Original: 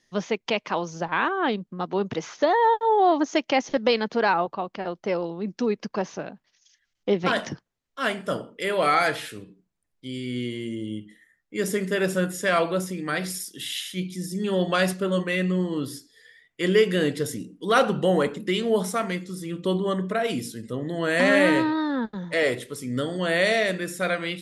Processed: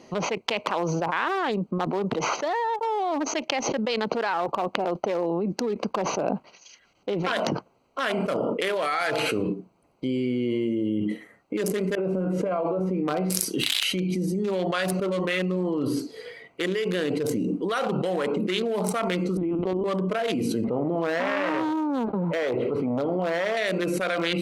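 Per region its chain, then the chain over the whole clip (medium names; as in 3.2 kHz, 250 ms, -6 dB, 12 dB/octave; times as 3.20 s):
11.95–13.30 s: low-pass 1.2 kHz 6 dB/octave + compressor with a negative ratio -30 dBFS, ratio -0.5 + feedback comb 94 Hz, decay 0.33 s, mix 50%
19.37–19.84 s: distance through air 430 m + LPC vocoder at 8 kHz pitch kept
20.64–23.57 s: companding laws mixed up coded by mu + distance through air 410 m + transformer saturation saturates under 1.1 kHz
whole clip: local Wiener filter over 25 samples; high-pass 610 Hz 6 dB/octave; level flattener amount 100%; trim -7.5 dB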